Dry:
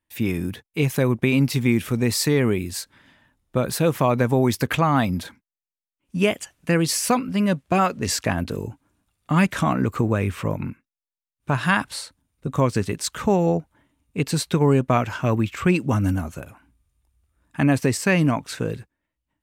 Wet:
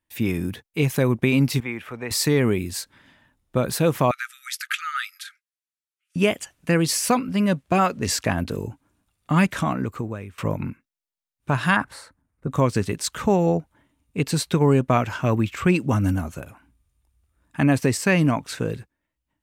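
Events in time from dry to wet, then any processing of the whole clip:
1.6–2.11 three-band isolator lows -16 dB, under 530 Hz, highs -18 dB, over 2600 Hz
4.11–6.16 brick-wall FIR band-pass 1200–13000 Hz
9.38–10.38 fade out, to -21.5 dB
11.76–12.51 resonant high shelf 2300 Hz -9.5 dB, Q 1.5

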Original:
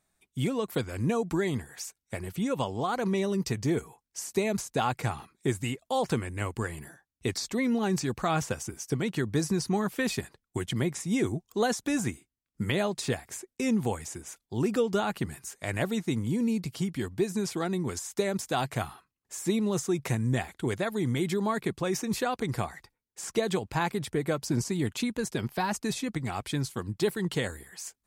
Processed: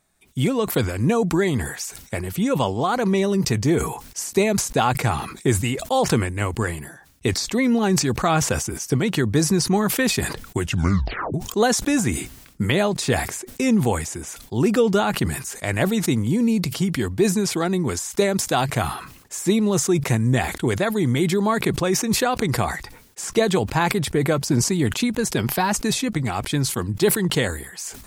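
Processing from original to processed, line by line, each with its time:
10.61 tape stop 0.73 s
whole clip: sustainer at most 75 dB/s; gain +8 dB

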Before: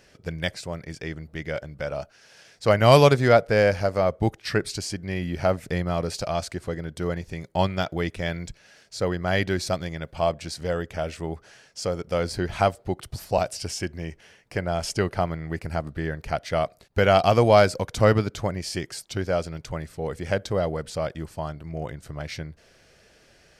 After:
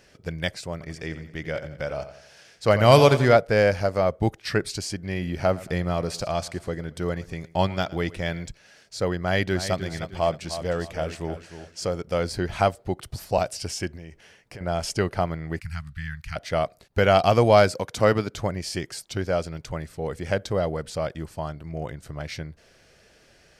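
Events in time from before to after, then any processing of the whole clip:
0.72–3.36 feedback echo 87 ms, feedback 46%, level -12 dB
4.93–8.47 feedback echo 0.113 s, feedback 42%, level -20 dB
9.2–11.97 feedback echo 0.307 s, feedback 31%, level -11 dB
13.96–14.61 compressor, threshold -37 dBFS
15.6–16.36 Chebyshev band-stop 120–1700 Hz
17.72–18.34 HPF 170 Hz 6 dB/oct

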